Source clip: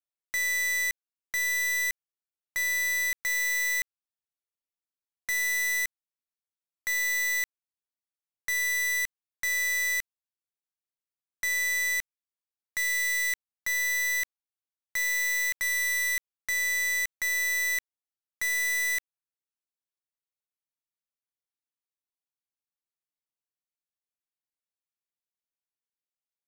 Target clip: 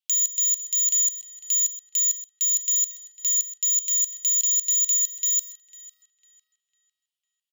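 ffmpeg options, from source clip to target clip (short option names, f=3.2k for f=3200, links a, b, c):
-filter_complex "[0:a]highpass=f=870:t=q:w=4.9,asplit=2[a][b];[b]aecho=0:1:445:0.188[c];[a][c]amix=inputs=2:normalize=0,asetrate=155232,aresample=44100,asplit=2[d][e];[e]adelay=501,lowpass=f=3.1k:p=1,volume=-14dB,asplit=2[f][g];[g]adelay=501,lowpass=f=3.1k:p=1,volume=0.47,asplit=2[h][i];[i]adelay=501,lowpass=f=3.1k:p=1,volume=0.47,asplit=2[j][k];[k]adelay=501,lowpass=f=3.1k:p=1,volume=0.47[l];[f][h][j][l]amix=inputs=4:normalize=0[m];[d][m]amix=inputs=2:normalize=0,volume=5dB"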